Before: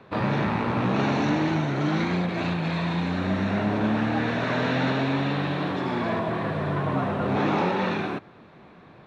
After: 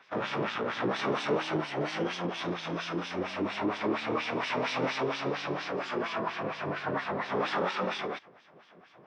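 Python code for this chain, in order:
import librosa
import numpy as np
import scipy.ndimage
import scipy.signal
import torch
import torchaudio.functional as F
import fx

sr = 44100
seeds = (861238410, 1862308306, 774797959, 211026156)

y = fx.filter_lfo_bandpass(x, sr, shape='sine', hz=4.3, low_hz=270.0, high_hz=3000.0, q=1.1)
y = fx.formant_shift(y, sr, semitones=6)
y = F.gain(torch.from_numpy(y), -1.0).numpy()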